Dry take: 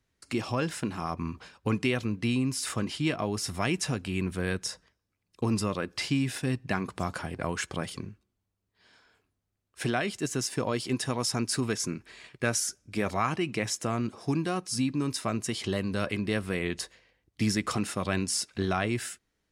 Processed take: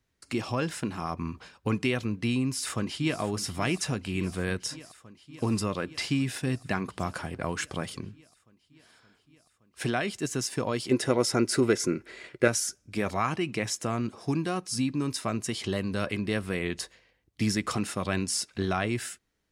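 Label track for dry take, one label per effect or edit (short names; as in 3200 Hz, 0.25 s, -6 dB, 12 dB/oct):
2.440000	3.200000	echo throw 0.57 s, feedback 80%, level -14.5 dB
10.910000	12.480000	small resonant body resonances 370/520/1400/2000 Hz, height 11 dB, ringing for 25 ms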